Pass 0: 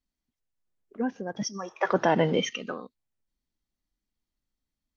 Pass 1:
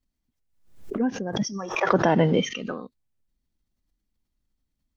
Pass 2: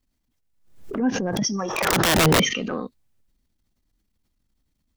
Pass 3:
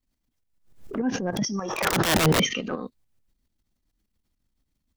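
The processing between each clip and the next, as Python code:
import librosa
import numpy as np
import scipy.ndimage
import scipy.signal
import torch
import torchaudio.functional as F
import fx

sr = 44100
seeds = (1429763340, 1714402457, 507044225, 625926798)

y1 = fx.low_shelf(x, sr, hz=290.0, db=8.5)
y1 = fx.pre_swell(y1, sr, db_per_s=94.0)
y2 = (np.mod(10.0 ** (15.5 / 20.0) * y1 + 1.0, 2.0) - 1.0) / 10.0 ** (15.5 / 20.0)
y2 = fx.transient(y2, sr, attack_db=-11, sustain_db=4)
y2 = F.gain(torch.from_numpy(y2), 5.5).numpy()
y3 = fx.tremolo_shape(y2, sr, shape='saw_up', hz=6.9, depth_pct=60)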